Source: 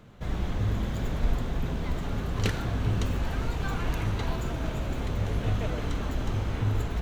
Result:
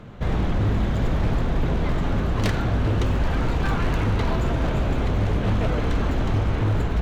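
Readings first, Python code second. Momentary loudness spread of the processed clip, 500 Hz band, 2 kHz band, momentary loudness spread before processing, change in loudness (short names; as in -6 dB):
2 LU, +8.0 dB, +6.5 dB, 3 LU, +7.0 dB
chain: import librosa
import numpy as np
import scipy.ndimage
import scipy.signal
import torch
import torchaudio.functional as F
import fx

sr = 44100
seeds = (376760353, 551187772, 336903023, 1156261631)

p1 = fx.lowpass(x, sr, hz=2600.0, slope=6)
p2 = fx.rider(p1, sr, range_db=10, speed_s=0.5)
p3 = p1 + (p2 * 10.0 ** (-2.0 / 20.0))
p4 = 10.0 ** (-19.0 / 20.0) * (np.abs((p3 / 10.0 ** (-19.0 / 20.0) + 3.0) % 4.0 - 2.0) - 1.0)
y = p4 * 10.0 ** (3.5 / 20.0)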